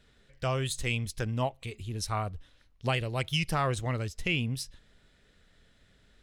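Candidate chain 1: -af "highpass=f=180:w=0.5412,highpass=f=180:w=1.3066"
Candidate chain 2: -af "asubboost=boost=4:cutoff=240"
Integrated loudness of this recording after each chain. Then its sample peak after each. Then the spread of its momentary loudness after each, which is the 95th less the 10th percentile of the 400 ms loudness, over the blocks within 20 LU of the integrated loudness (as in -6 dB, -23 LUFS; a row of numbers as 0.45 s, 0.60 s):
-33.5 LUFS, -27.5 LUFS; -14.0 dBFS, -12.5 dBFS; 9 LU, 8 LU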